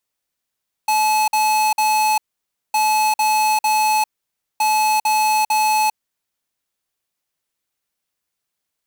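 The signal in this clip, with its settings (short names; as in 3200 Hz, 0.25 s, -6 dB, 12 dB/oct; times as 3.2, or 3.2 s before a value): beep pattern square 860 Hz, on 0.40 s, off 0.05 s, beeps 3, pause 0.56 s, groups 3, -16.5 dBFS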